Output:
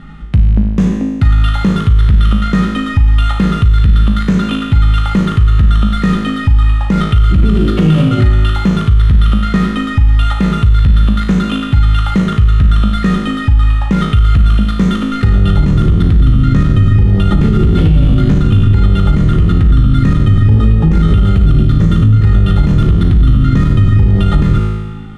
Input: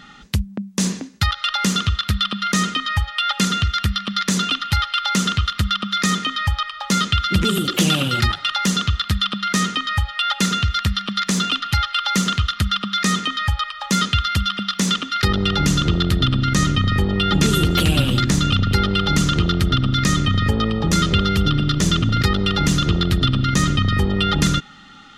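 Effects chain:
running median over 9 samples
Butterworth low-pass 12,000 Hz 96 dB per octave
RIAA equalisation playback
tuned comb filter 53 Hz, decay 1.3 s, harmonics all, mix 90%
boost into a limiter +18.5 dB
level −1 dB

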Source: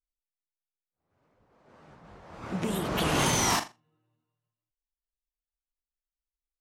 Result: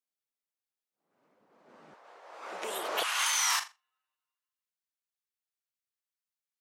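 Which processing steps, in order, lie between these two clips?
high-pass filter 190 Hz 24 dB per octave, from 0:01.94 470 Hz, from 0:03.03 1,100 Hz

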